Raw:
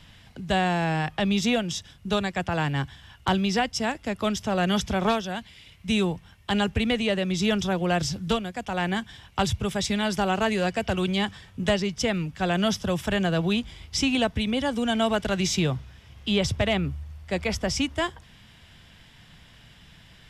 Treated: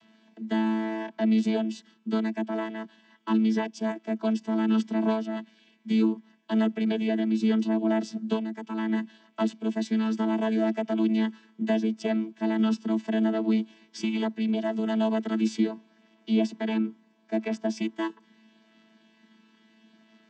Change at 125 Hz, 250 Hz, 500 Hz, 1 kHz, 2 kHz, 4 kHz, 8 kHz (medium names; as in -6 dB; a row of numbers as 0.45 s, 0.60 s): no reading, +2.0 dB, -3.5 dB, -7.5 dB, -9.5 dB, -12.5 dB, under -10 dB